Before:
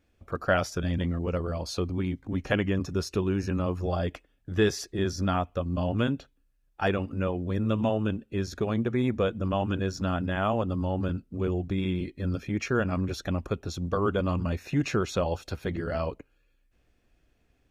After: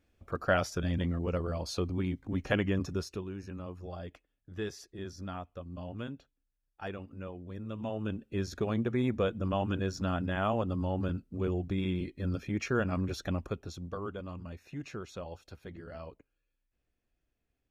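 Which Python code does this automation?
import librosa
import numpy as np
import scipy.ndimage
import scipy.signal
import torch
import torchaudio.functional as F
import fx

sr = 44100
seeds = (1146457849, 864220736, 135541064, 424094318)

y = fx.gain(x, sr, db=fx.line((2.89, -3.0), (3.29, -13.5), (7.72, -13.5), (8.25, -3.5), (13.32, -3.5), (14.23, -14.5)))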